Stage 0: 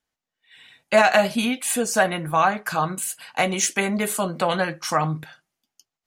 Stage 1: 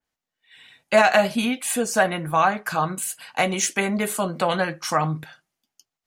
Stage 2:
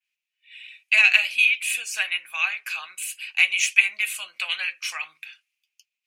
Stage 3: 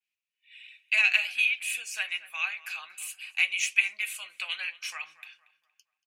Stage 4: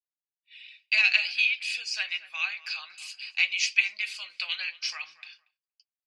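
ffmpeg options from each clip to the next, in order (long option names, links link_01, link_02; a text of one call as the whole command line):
ffmpeg -i in.wav -af "adynamicequalizer=threshold=0.0224:dfrequency=2900:dqfactor=0.7:tfrequency=2900:tqfactor=0.7:attack=5:release=100:ratio=0.375:range=1.5:mode=cutabove:tftype=highshelf" out.wav
ffmpeg -i in.wav -af "highpass=frequency=2500:width_type=q:width=9.2,volume=-4dB" out.wav
ffmpeg -i in.wav -filter_complex "[0:a]asplit=2[link_01][link_02];[link_02]adelay=233,lowpass=frequency=2200:poles=1,volume=-16.5dB,asplit=2[link_03][link_04];[link_04]adelay=233,lowpass=frequency=2200:poles=1,volume=0.41,asplit=2[link_05][link_06];[link_06]adelay=233,lowpass=frequency=2200:poles=1,volume=0.41,asplit=2[link_07][link_08];[link_08]adelay=233,lowpass=frequency=2200:poles=1,volume=0.41[link_09];[link_01][link_03][link_05][link_07][link_09]amix=inputs=5:normalize=0,volume=-6.5dB" out.wav
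ffmpeg -i in.wav -af "agate=range=-33dB:threshold=-54dB:ratio=3:detection=peak,lowpass=frequency=4800:width_type=q:width=11,volume=-2dB" out.wav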